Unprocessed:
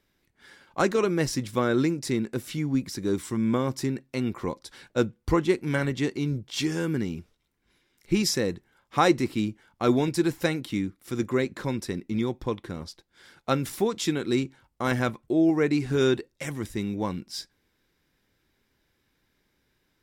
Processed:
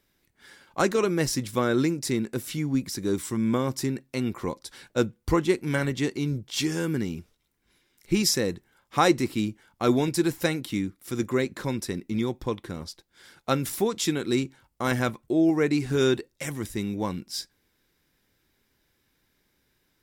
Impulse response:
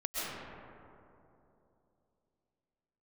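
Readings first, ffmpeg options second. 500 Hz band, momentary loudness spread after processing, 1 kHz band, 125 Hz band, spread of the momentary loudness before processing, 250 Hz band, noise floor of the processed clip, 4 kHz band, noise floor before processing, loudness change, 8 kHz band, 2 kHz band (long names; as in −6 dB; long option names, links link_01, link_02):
0.0 dB, 11 LU, 0.0 dB, 0.0 dB, 11 LU, 0.0 dB, −72 dBFS, +2.0 dB, −73 dBFS, +0.5 dB, +4.0 dB, +0.5 dB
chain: -af "highshelf=frequency=6800:gain=7.5"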